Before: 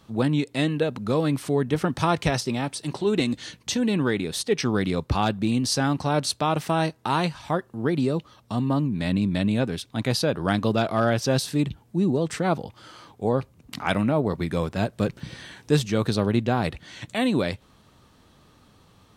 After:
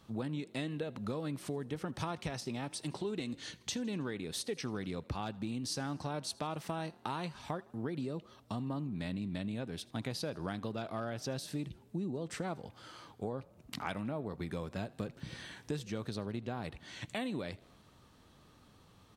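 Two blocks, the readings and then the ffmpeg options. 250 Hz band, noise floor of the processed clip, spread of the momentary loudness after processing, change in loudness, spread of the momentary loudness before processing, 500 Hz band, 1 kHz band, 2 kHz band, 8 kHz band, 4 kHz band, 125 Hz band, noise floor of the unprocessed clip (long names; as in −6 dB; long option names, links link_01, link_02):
−14.5 dB, −62 dBFS, 5 LU, −15.0 dB, 6 LU, −15.5 dB, −15.0 dB, −14.5 dB, −12.0 dB, −13.0 dB, −15.0 dB, −58 dBFS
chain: -filter_complex "[0:a]acompressor=threshold=-29dB:ratio=6,asplit=2[link_01][link_02];[link_02]asplit=4[link_03][link_04][link_05][link_06];[link_03]adelay=80,afreqshift=34,volume=-23dB[link_07];[link_04]adelay=160,afreqshift=68,volume=-27.3dB[link_08];[link_05]adelay=240,afreqshift=102,volume=-31.6dB[link_09];[link_06]adelay=320,afreqshift=136,volume=-35.9dB[link_10];[link_07][link_08][link_09][link_10]amix=inputs=4:normalize=0[link_11];[link_01][link_11]amix=inputs=2:normalize=0,volume=-6dB"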